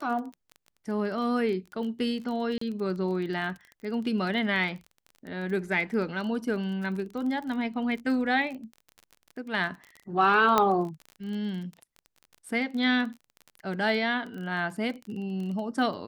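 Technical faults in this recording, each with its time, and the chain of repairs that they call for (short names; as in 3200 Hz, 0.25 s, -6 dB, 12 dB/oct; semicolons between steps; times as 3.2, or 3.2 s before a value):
crackle 24/s -35 dBFS
2.58–2.61 gap 34 ms
10.58 pop -8 dBFS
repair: de-click; interpolate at 2.58, 34 ms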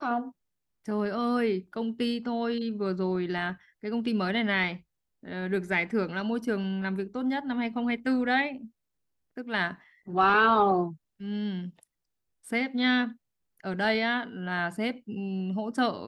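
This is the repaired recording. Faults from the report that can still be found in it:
none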